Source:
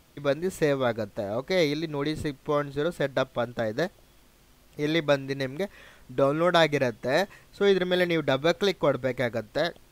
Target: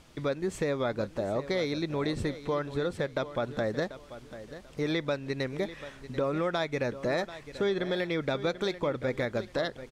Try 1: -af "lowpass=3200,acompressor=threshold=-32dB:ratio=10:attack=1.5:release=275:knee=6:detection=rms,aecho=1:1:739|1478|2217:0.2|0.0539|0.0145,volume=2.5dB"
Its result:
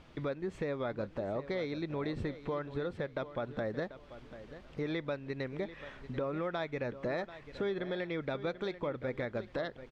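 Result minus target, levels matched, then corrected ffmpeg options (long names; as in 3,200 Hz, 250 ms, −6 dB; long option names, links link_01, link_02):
8,000 Hz band −11.5 dB; downward compressor: peak gain reduction +5.5 dB
-af "lowpass=8500,acompressor=threshold=-25dB:ratio=10:attack=1.5:release=275:knee=6:detection=rms,aecho=1:1:739|1478|2217:0.2|0.0539|0.0145,volume=2.5dB"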